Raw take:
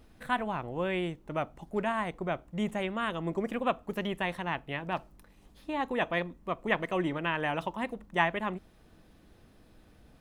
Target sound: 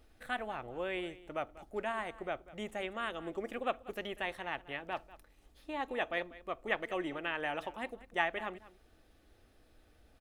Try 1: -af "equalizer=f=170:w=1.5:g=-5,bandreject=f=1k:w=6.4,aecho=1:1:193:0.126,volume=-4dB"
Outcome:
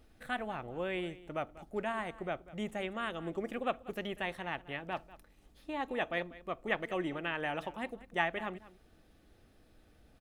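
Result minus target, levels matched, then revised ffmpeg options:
125 Hz band +6.0 dB
-af "equalizer=f=170:w=1.5:g=-13.5,bandreject=f=1k:w=6.4,aecho=1:1:193:0.126,volume=-4dB"

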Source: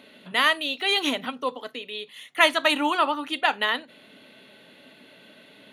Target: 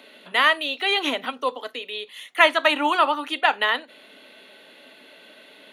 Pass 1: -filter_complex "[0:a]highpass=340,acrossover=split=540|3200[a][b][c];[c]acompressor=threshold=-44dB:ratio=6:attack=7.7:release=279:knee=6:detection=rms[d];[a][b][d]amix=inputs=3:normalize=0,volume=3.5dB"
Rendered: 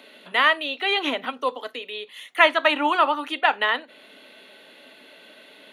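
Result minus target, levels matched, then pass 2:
compressor: peak gain reduction +8 dB
-filter_complex "[0:a]highpass=340,acrossover=split=540|3200[a][b][c];[c]acompressor=threshold=-34.5dB:ratio=6:attack=7.7:release=279:knee=6:detection=rms[d];[a][b][d]amix=inputs=3:normalize=0,volume=3.5dB"

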